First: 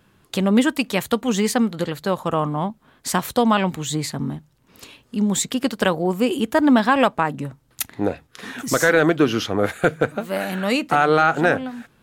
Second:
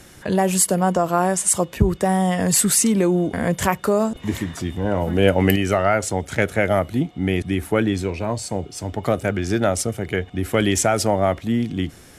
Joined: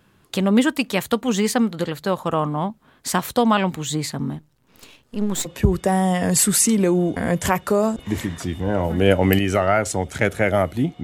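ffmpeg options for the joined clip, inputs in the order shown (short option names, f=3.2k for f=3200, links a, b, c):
-filter_complex "[0:a]asettb=1/sr,asplit=3[a][b][c];[a]atrim=end=4.394[d];[b]atrim=start=4.39:end=5.5,asetpts=PTS-STARTPTS,afade=t=in:d=0.004:c=qsin,afade=t=out:st=1.106:d=0.004:c=qsin,aeval=exprs='if(lt(val(0),0),0.251*val(0),val(0))':c=same[e];[c]atrim=start=5.496[f];[d][e]acrossfade=d=0.004:c1=hsin:c2=qsin[g];[g][f]acrossfade=d=0.004:c1=qsin:c2=hsin,apad=whole_dur=11.03,atrim=end=11.03,atrim=end=5.5,asetpts=PTS-STARTPTS[h];[1:a]atrim=start=1.61:end=7.2,asetpts=PTS-STARTPTS[i];[h][i]acrossfade=d=0.06:c1=tri:c2=tri"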